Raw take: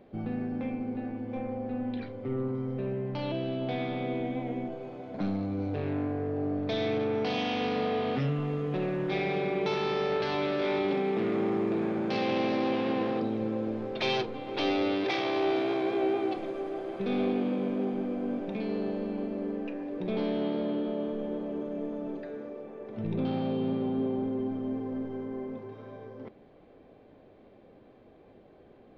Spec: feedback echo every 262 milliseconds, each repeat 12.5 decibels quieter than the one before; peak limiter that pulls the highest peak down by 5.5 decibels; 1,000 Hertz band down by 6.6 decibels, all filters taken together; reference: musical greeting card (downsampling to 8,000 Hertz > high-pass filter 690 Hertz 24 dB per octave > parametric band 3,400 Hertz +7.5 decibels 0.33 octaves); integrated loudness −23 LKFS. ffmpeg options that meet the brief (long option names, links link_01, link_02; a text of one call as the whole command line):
ffmpeg -i in.wav -af "equalizer=frequency=1000:width_type=o:gain=-8,alimiter=limit=-24dB:level=0:latency=1,aecho=1:1:262|524|786:0.237|0.0569|0.0137,aresample=8000,aresample=44100,highpass=frequency=690:width=0.5412,highpass=frequency=690:width=1.3066,equalizer=frequency=3400:width_type=o:width=0.33:gain=7.5,volume=17.5dB" out.wav